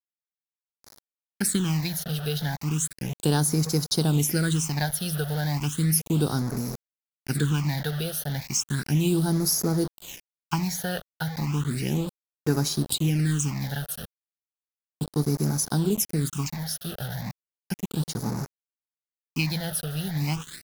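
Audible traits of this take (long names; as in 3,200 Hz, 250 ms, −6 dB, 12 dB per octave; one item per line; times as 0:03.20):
a quantiser's noise floor 6 bits, dither none
phaser sweep stages 8, 0.34 Hz, lowest notch 290–3,000 Hz
SBC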